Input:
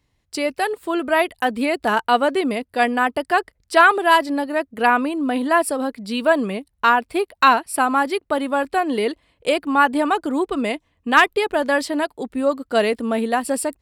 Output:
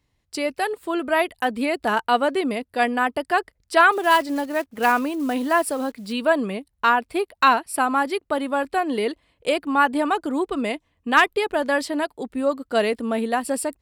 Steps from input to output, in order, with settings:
0:03.92–0:06.13: one scale factor per block 5 bits
level −2.5 dB

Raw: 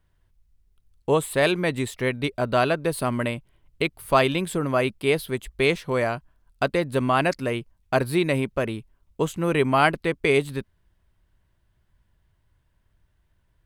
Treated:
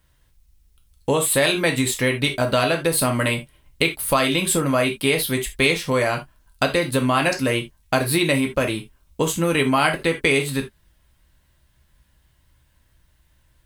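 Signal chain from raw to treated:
convolution reverb, pre-delay 3 ms, DRR 2.5 dB
downward compressor 4 to 1, threshold −21 dBFS, peak gain reduction 9 dB
high-shelf EQ 2,800 Hz +10.5 dB
level +4 dB

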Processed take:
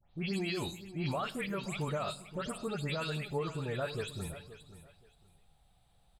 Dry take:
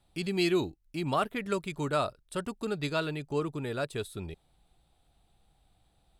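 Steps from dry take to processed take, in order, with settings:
every frequency bin delayed by itself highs late, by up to 177 ms
parametric band 300 Hz −11 dB 0.4 octaves
brickwall limiter −27 dBFS, peak gain reduction 10 dB
repeating echo 526 ms, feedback 23%, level −14.5 dB
on a send at −13 dB: convolution reverb RT60 0.75 s, pre-delay 7 ms

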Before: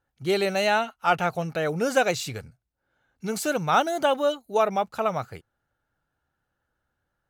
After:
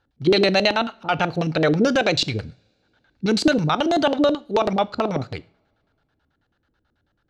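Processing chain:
brickwall limiter −18 dBFS, peak gain reduction 10 dB
auto-filter low-pass square 9.2 Hz 310–4,200 Hz
coupled-rooms reverb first 0.4 s, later 2.3 s, from −27 dB, DRR 16.5 dB
level +8 dB

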